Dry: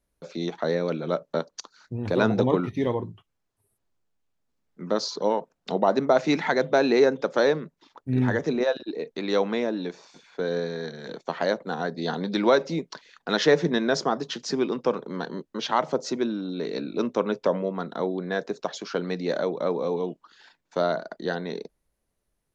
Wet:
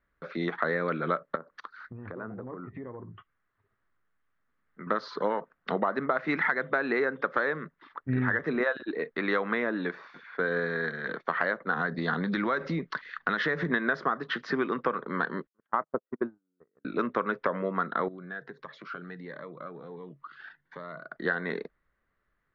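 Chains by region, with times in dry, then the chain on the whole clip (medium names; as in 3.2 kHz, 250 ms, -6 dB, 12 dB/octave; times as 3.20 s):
1.35–4.87 s: low-pass that closes with the level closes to 880 Hz, closed at -22.5 dBFS + compression 4:1, threshold -39 dBFS
11.76–13.70 s: tone controls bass +7 dB, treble +7 dB + compression 4:1, threshold -25 dBFS + tape noise reduction on one side only encoder only
15.47–16.85 s: gate -25 dBFS, range -49 dB + low-pass 1 kHz + short-mantissa float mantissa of 6-bit
18.08–21.16 s: peaking EQ 140 Hz +13.5 dB 0.36 oct + compression 2.5:1, threshold -45 dBFS + Shepard-style phaser rising 1.4 Hz
whole clip: low-pass 3.5 kHz 24 dB/octave; high-order bell 1.5 kHz +13 dB 1.1 oct; compression 12:1, threshold -22 dBFS; trim -1 dB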